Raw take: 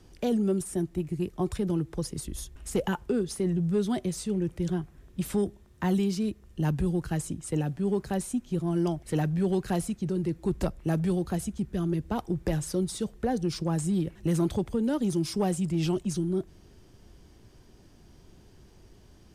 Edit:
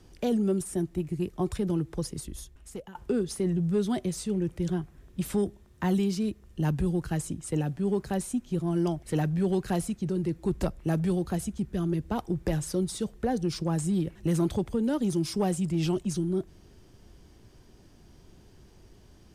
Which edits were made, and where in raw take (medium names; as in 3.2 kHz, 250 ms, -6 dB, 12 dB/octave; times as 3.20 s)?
2.03–2.95 s: fade out, to -22.5 dB